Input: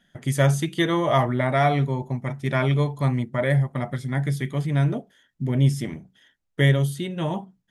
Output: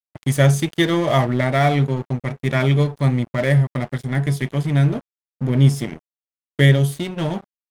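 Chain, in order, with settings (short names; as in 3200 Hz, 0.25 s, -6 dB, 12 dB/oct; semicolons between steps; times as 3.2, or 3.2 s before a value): dynamic EQ 1000 Hz, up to -6 dB, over -39 dBFS, Q 1.3; crossover distortion -37 dBFS; gain +6 dB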